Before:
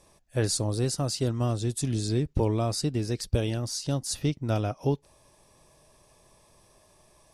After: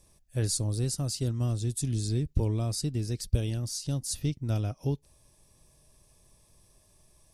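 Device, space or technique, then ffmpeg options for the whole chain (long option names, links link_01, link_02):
smiley-face EQ: -af "lowshelf=frequency=130:gain=8.5,equalizer=frequency=910:width_type=o:width=2.5:gain=-6.5,highshelf=frequency=8500:gain=8.5,volume=-4.5dB"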